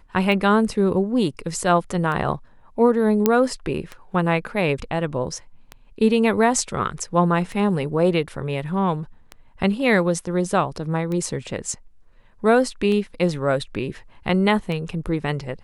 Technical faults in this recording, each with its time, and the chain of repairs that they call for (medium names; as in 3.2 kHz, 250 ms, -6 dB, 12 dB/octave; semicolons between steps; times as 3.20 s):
tick 33 1/3 rpm -17 dBFS
3.26 s: pop -3 dBFS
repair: de-click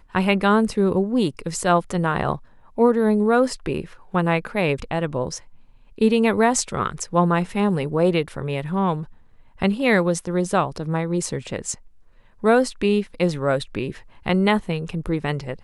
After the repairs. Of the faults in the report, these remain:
3.26 s: pop